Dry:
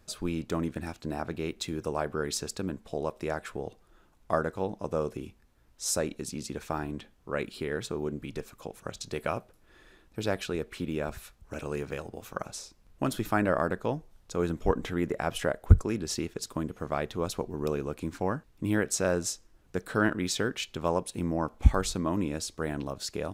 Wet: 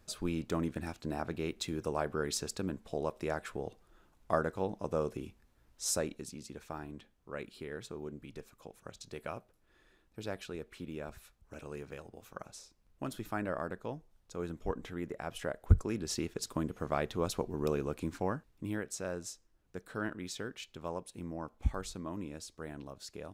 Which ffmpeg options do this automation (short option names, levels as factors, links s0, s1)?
-af "volume=1.78,afade=t=out:st=5.87:d=0.51:silence=0.446684,afade=t=in:st=15.32:d=1.14:silence=0.398107,afade=t=out:st=17.99:d=0.84:silence=0.334965"